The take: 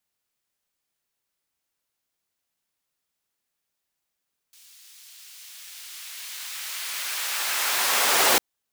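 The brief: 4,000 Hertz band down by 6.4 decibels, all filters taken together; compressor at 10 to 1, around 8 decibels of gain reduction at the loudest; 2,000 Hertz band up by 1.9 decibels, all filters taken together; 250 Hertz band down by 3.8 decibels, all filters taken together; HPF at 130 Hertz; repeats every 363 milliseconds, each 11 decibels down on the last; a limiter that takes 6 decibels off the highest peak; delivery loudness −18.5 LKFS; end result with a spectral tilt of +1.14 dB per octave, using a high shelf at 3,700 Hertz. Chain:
high-pass filter 130 Hz
parametric band 250 Hz −5.5 dB
parametric band 2,000 Hz +5.5 dB
high-shelf EQ 3,700 Hz −4.5 dB
parametric band 4,000 Hz −7.5 dB
downward compressor 10 to 1, threshold −25 dBFS
brickwall limiter −21.5 dBFS
repeating echo 363 ms, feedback 28%, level −11 dB
level +13.5 dB

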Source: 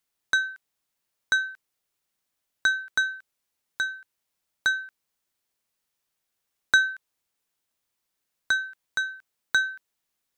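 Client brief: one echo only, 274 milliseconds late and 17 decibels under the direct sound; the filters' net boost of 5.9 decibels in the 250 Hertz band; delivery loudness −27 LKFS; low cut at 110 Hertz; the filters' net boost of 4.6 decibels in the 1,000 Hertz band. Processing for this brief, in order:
high-pass filter 110 Hz
parametric band 250 Hz +7.5 dB
parametric band 1,000 Hz +6.5 dB
single-tap delay 274 ms −17 dB
level −3 dB

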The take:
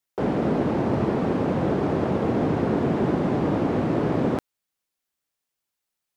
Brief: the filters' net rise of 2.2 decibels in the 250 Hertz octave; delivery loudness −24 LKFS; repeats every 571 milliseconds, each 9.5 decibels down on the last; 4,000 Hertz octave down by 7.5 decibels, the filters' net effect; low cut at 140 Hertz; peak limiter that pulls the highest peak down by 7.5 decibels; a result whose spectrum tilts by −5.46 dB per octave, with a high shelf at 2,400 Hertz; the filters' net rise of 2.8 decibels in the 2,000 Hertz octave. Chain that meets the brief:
high-pass filter 140 Hz
parametric band 250 Hz +3.5 dB
parametric band 2,000 Hz +9 dB
high-shelf EQ 2,400 Hz −9 dB
parametric band 4,000 Hz −7 dB
brickwall limiter −17.5 dBFS
repeating echo 571 ms, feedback 33%, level −9.5 dB
level +2 dB

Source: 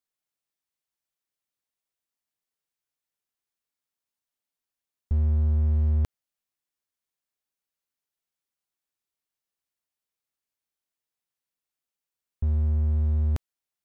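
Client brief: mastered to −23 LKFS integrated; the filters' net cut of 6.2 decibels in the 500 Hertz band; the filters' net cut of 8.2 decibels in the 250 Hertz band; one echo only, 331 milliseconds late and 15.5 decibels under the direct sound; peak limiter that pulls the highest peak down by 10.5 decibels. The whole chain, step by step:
parametric band 250 Hz −8.5 dB
parametric band 500 Hz −5 dB
brickwall limiter −29 dBFS
single-tap delay 331 ms −15.5 dB
level +13.5 dB

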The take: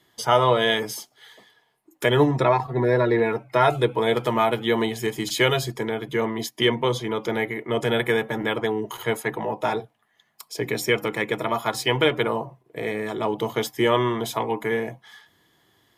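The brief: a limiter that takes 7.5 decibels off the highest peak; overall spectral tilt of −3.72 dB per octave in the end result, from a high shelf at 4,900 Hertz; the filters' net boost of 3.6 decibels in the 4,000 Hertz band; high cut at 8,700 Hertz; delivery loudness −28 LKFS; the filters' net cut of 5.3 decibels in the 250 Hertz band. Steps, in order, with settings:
low-pass filter 8,700 Hz
parametric band 250 Hz −8 dB
parametric band 4,000 Hz +3 dB
high-shelf EQ 4,900 Hz +5 dB
level −2.5 dB
brickwall limiter −14.5 dBFS

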